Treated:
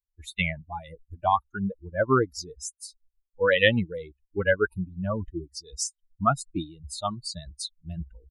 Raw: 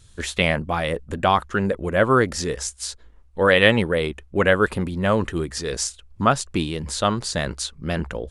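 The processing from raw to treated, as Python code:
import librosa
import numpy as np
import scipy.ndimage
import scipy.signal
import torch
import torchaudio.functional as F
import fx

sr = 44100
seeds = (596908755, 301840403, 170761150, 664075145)

y = fx.bin_expand(x, sr, power=3.0)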